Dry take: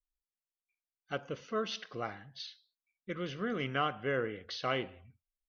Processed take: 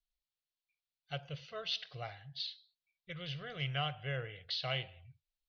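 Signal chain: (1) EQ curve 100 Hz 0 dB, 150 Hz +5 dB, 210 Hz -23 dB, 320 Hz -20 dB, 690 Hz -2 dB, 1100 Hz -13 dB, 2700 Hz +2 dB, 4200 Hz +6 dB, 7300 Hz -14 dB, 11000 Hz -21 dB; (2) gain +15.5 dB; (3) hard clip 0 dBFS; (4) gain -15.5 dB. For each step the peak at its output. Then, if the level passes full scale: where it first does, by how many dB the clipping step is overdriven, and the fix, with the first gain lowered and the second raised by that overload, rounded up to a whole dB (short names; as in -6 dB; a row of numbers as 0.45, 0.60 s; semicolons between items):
-21.5, -6.0, -6.0, -21.5 dBFS; no overload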